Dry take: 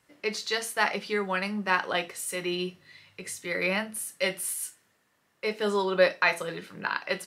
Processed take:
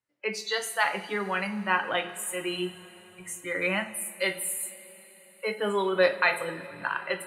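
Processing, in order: spectral noise reduction 23 dB; two-slope reverb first 0.52 s, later 4.6 s, from -16 dB, DRR 8 dB

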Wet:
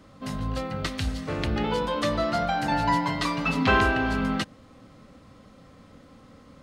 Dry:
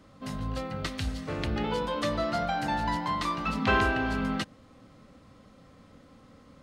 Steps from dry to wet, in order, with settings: 2.71–3.67 s: comb 7.2 ms, depth 82%; trim +3.5 dB

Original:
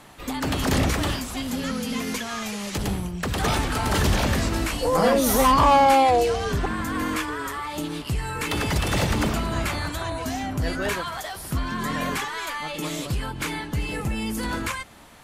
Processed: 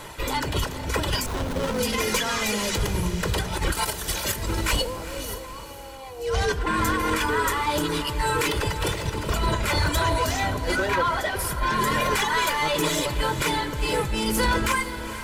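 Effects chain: 3.72–4.36 s: RIAA curve recording; reverb removal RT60 0.65 s; 10.88–11.39 s: tone controls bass +1 dB, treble -13 dB; compressor with a negative ratio -29 dBFS, ratio -0.5; sine folder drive 5 dB, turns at -14.5 dBFS; echo that smears into a reverb 459 ms, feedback 51%, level -12 dB; reverberation RT60 1.4 s, pre-delay 3 ms, DRR 13 dB; 1.26–1.79 s: sliding maximum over 17 samples; trim -4.5 dB

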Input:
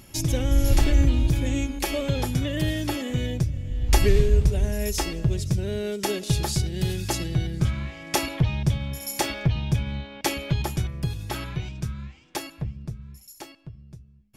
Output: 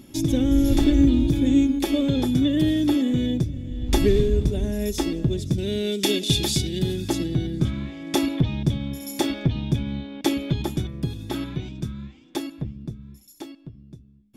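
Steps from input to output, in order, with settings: 5.58–6.79 s: resonant high shelf 1.8 kHz +7.5 dB, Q 1.5; small resonant body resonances 270/3500 Hz, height 16 dB, ringing for 25 ms; trim -4.5 dB

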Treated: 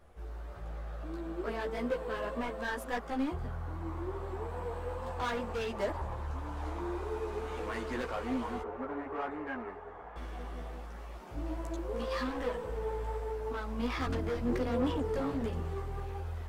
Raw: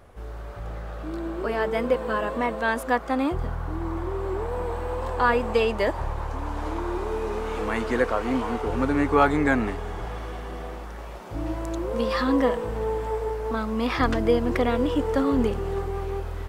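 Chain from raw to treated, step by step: hard clipper -21.5 dBFS, distortion -9 dB; 8.62–10.16 s: three-band isolator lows -15 dB, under 350 Hz, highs -24 dB, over 2 kHz; chorus voices 6, 1.4 Hz, delay 14 ms, depth 3 ms; trim -6 dB

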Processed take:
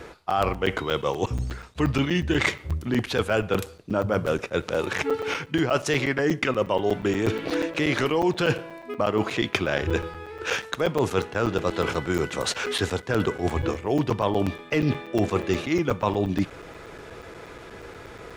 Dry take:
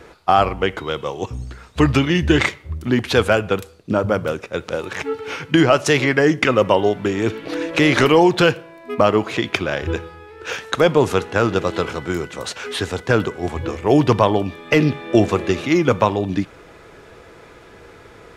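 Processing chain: reverse; compression 6:1, threshold -22 dBFS, peak gain reduction 13.5 dB; reverse; crackling interface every 0.12 s, samples 256, zero, from 0.30 s; trim +2 dB

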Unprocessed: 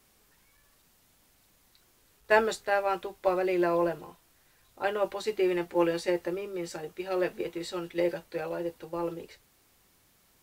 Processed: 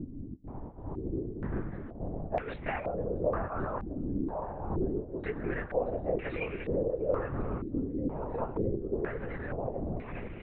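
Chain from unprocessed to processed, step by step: wind noise 210 Hz -32 dBFS; compression 6:1, threshold -34 dBFS, peak gain reduction 16.5 dB; trance gate "xxx.xx.xxxxxxx" 135 bpm -24 dB; doubling 19 ms -5 dB; shuffle delay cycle 1097 ms, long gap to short 1.5:1, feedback 41%, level -5 dB; LPC vocoder at 8 kHz whisper; step-sequenced low-pass 2.1 Hz 280–2300 Hz

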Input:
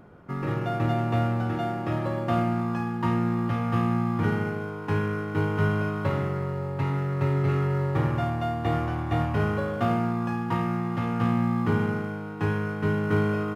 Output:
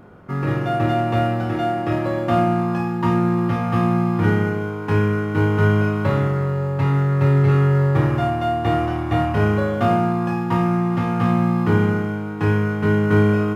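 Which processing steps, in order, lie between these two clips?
flutter echo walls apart 4.9 m, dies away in 0.24 s; trim +5 dB

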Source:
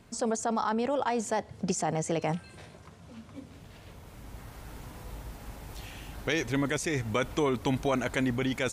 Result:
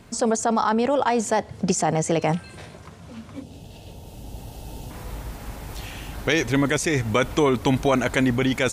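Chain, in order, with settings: time-frequency box 3.42–4.91 s, 930–2500 Hz -13 dB; trim +8 dB

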